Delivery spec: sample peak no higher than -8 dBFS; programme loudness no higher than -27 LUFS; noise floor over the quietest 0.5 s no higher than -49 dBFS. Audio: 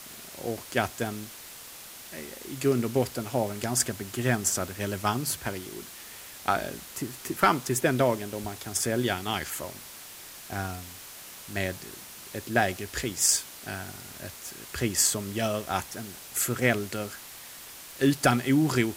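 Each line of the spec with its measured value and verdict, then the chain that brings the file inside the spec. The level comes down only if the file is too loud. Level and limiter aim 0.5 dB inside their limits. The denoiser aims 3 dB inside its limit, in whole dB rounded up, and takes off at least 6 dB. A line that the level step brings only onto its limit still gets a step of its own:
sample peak -7.5 dBFS: fail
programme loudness -28.0 LUFS: OK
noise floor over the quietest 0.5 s -45 dBFS: fail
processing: denoiser 7 dB, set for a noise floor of -45 dBFS; limiter -8.5 dBFS

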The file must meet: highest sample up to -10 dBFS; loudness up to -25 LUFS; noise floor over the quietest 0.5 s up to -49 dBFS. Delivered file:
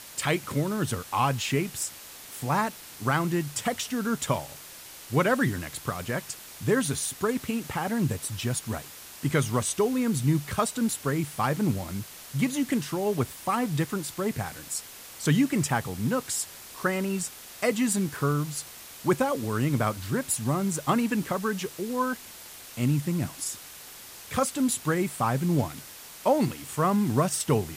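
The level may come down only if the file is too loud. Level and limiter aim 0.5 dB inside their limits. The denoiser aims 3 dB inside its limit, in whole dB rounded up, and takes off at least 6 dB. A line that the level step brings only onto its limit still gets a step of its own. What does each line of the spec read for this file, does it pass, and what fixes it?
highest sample -11.5 dBFS: OK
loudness -28.0 LUFS: OK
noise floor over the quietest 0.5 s -45 dBFS: fail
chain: denoiser 7 dB, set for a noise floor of -45 dBFS

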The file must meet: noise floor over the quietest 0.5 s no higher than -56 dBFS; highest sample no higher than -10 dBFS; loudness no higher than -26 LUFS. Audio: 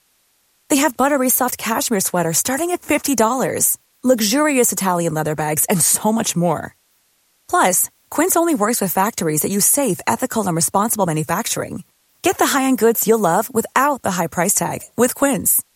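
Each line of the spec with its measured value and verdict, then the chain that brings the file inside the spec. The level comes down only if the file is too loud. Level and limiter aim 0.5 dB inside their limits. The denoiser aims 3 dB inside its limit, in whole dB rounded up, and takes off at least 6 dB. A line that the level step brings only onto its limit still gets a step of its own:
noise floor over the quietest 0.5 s -61 dBFS: OK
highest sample -3.0 dBFS: fail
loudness -17.0 LUFS: fail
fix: gain -9.5 dB

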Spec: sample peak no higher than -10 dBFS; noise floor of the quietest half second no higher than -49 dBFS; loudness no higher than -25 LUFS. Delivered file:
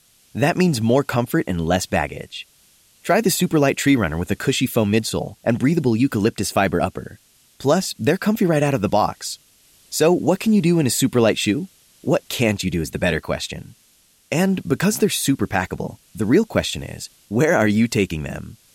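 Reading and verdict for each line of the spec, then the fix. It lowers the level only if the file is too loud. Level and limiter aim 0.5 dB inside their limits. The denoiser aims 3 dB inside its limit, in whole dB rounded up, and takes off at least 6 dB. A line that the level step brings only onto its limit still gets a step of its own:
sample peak -5.5 dBFS: fail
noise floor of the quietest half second -57 dBFS: OK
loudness -20.0 LUFS: fail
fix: gain -5.5 dB

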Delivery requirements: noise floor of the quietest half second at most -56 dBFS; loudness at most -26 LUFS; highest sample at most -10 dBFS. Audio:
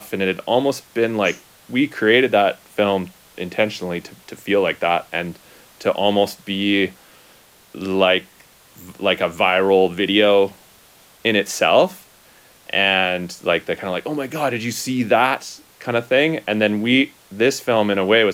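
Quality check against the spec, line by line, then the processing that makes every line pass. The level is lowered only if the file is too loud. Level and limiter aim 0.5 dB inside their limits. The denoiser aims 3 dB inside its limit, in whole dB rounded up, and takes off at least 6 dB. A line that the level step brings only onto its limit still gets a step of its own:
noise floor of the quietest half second -50 dBFS: fail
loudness -19.0 LUFS: fail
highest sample -2.5 dBFS: fail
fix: gain -7.5 dB; limiter -10.5 dBFS

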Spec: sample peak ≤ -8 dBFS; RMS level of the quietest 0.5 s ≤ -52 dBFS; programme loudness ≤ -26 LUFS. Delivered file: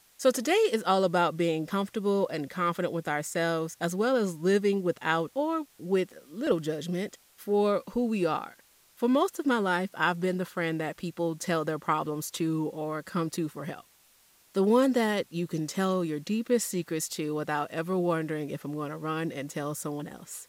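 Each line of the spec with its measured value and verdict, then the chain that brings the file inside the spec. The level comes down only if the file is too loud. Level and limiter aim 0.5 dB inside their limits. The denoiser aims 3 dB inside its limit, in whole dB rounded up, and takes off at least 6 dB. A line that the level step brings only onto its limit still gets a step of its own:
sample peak -10.5 dBFS: OK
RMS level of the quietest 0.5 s -62 dBFS: OK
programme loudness -29.0 LUFS: OK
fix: none

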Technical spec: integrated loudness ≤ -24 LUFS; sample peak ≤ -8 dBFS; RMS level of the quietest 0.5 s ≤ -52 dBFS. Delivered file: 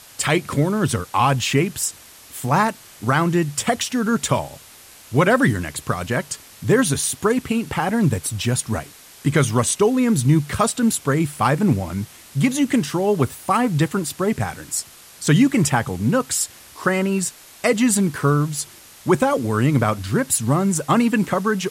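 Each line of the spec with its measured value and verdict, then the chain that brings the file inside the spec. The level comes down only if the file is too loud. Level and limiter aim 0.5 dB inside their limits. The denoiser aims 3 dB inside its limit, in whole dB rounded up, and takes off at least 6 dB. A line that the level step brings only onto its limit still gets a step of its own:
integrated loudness -20.0 LUFS: fail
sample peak -5.5 dBFS: fail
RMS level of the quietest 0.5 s -45 dBFS: fail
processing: denoiser 6 dB, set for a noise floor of -45 dBFS; gain -4.5 dB

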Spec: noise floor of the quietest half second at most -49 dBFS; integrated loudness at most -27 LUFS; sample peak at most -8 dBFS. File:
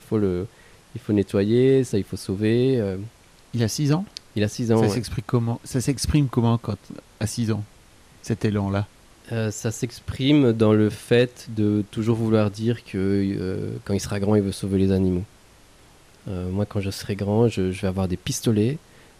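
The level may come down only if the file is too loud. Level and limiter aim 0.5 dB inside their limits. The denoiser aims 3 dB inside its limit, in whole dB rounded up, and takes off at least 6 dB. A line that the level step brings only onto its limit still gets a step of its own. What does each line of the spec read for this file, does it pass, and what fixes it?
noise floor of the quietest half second -52 dBFS: OK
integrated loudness -23.0 LUFS: fail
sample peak -7.0 dBFS: fail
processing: gain -4.5 dB

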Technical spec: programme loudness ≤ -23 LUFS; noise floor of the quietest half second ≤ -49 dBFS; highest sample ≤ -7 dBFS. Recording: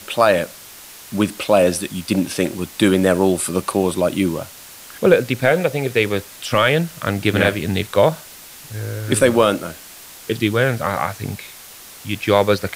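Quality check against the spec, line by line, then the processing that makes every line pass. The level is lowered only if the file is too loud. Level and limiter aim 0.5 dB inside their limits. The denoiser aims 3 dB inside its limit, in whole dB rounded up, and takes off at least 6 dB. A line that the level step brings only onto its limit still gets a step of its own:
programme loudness -18.5 LUFS: fail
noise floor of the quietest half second -40 dBFS: fail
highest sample -2.0 dBFS: fail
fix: denoiser 7 dB, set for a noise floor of -40 dBFS; gain -5 dB; limiter -7.5 dBFS

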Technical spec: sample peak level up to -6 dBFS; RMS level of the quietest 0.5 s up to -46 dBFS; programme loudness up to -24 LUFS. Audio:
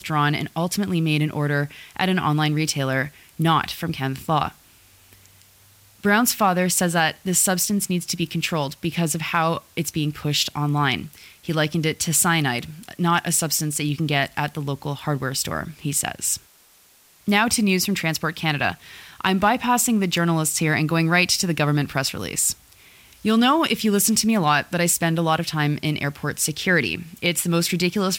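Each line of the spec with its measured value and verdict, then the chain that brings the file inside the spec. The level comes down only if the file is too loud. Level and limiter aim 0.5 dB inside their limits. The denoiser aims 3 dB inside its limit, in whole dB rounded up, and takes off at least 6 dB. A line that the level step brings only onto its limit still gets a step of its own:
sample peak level -5.0 dBFS: fail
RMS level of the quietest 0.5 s -55 dBFS: OK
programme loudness -21.5 LUFS: fail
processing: gain -3 dB

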